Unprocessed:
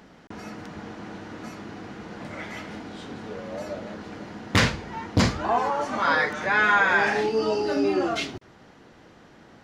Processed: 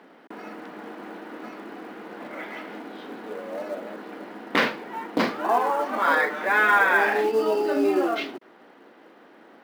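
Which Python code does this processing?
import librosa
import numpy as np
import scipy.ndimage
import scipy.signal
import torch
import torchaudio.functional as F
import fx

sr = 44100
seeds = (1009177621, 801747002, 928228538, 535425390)

p1 = scipy.signal.sosfilt(scipy.signal.butter(4, 260.0, 'highpass', fs=sr, output='sos'), x)
p2 = fx.air_absorb(p1, sr, metres=260.0)
p3 = fx.quant_float(p2, sr, bits=2)
p4 = p2 + F.gain(torch.from_numpy(p3), -4.0).numpy()
y = F.gain(torch.from_numpy(p4), -1.5).numpy()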